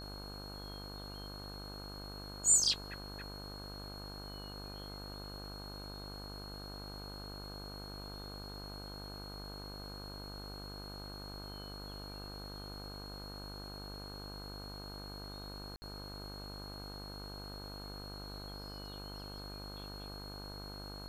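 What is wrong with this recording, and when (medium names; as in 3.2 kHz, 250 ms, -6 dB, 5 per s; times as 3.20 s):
buzz 50 Hz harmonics 32 -48 dBFS
whine 4.3 kHz -49 dBFS
15.76–15.82 s: dropout 60 ms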